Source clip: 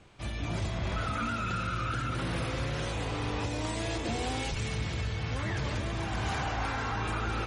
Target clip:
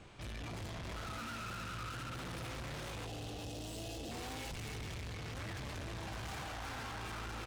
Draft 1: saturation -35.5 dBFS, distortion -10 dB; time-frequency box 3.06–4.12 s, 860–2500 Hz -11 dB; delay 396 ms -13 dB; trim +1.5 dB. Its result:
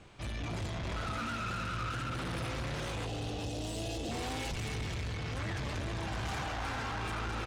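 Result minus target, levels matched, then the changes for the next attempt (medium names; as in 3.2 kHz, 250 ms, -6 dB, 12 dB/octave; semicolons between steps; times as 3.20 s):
saturation: distortion -4 dB
change: saturation -44 dBFS, distortion -6 dB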